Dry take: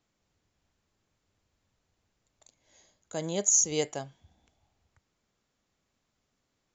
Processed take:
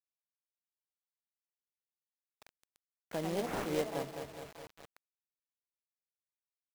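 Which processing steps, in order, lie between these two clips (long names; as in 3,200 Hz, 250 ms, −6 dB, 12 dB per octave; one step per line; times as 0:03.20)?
variable-slope delta modulation 32 kbit/s
delay with pitch and tempo change per echo 596 ms, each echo +3 semitones, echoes 2, each echo −6 dB
low-pass filter 2,000 Hz 12 dB per octave
low-shelf EQ 420 Hz −2.5 dB
on a send: repeating echo 209 ms, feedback 49%, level −10 dB
on the sum: dynamic equaliser 280 Hz, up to +4 dB, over −45 dBFS, Q 1.3
log-companded quantiser 4 bits
downward compressor 1.5 to 1, threshold −49 dBFS, peak gain reduction 9.5 dB
level +4 dB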